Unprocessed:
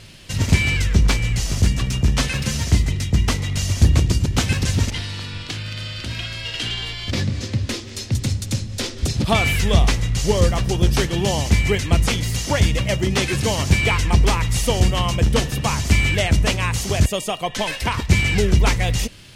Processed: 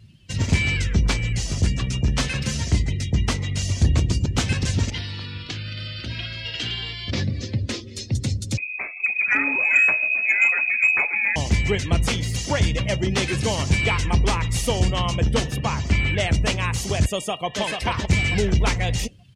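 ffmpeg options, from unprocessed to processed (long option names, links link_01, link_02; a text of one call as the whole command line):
ffmpeg -i in.wav -filter_complex "[0:a]asettb=1/sr,asplit=3[link_01][link_02][link_03];[link_01]atrim=end=8.574[link_04];[link_02]atrim=start=8.57:end=11.36,asetpts=PTS-STARTPTS,afade=type=in:duration=0.004:curve=qsin,afade=type=out:start_time=2.786:duration=0.004:curve=qsin,lowpass=frequency=2200:width_type=q:width=0.5098,lowpass=frequency=2200:width_type=q:width=0.6013,lowpass=frequency=2200:width_type=q:width=0.9,lowpass=frequency=2200:width_type=q:width=2.563,afreqshift=-2600[link_05];[link_03]atrim=start=11.356[link_06];[link_04][link_05]acrossfade=duration=0.004:curve1=hsin:curve2=qsin[link_07];[link_07][link_06]acrossfade=duration=0.004:curve1=qsin:curve2=hsin,asettb=1/sr,asplit=3[link_08][link_09][link_10];[link_08]atrim=end=15.564[link_11];[link_09]atrim=start=15.56:end=16.2,asetpts=PTS-STARTPTS,afade=type=in:duration=0.004:curve=qsin,afade=type=out:start_time=0.636:duration=0.004:curve=qsin,highshelf=frequency=5500:gain=-9.5[link_12];[link_10]atrim=start=16.196[link_13];[link_11][link_12]acrossfade=duration=0.004:curve1=hsin:curve2=qsin[link_14];[link_14][link_13]acrossfade=duration=0.004:curve1=qsin:curve2=hsin,asplit=2[link_15][link_16];[link_16]afade=type=in:start_time=17.11:duration=0.01,afade=type=out:start_time=17.61:duration=0.01,aecho=0:1:440|880|1320|1760:0.562341|0.196819|0.0688868|0.0241104[link_17];[link_15][link_17]amix=inputs=2:normalize=0,highpass=47,acontrast=28,afftdn=noise_reduction=19:noise_floor=-33,volume=-7dB" out.wav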